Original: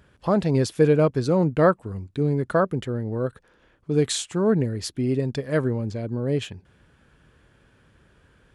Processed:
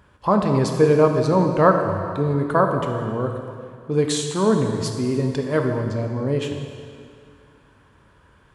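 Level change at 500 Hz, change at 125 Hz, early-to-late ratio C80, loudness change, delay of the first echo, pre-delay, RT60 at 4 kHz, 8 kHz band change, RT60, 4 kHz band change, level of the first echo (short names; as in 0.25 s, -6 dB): +3.0 dB, +1.5 dB, 6.0 dB, +3.0 dB, none, 3 ms, 2.0 s, +1.5 dB, 2.3 s, +1.5 dB, none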